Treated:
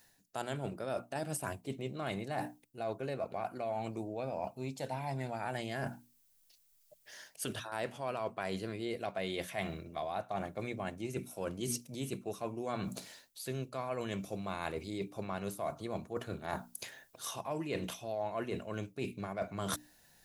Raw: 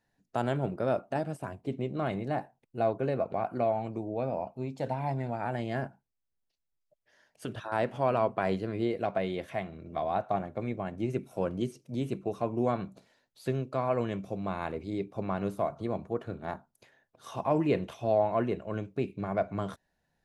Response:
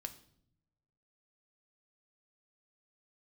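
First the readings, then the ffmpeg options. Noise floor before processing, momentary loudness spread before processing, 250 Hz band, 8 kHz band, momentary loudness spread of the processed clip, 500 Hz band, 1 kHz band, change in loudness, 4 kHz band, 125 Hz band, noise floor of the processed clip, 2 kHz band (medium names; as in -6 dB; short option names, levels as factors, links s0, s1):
-81 dBFS, 9 LU, -7.5 dB, no reading, 4 LU, -8.0 dB, -7.0 dB, -7.0 dB, +3.5 dB, -7.0 dB, -69 dBFS, -2.0 dB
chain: -af "bandreject=f=60:t=h:w=6,bandreject=f=120:t=h:w=6,bandreject=f=180:t=h:w=6,bandreject=f=240:t=h:w=6,bandreject=f=300:t=h:w=6,areverse,acompressor=threshold=0.00631:ratio=6,areverse,crystalizer=i=5.5:c=0,volume=2.24"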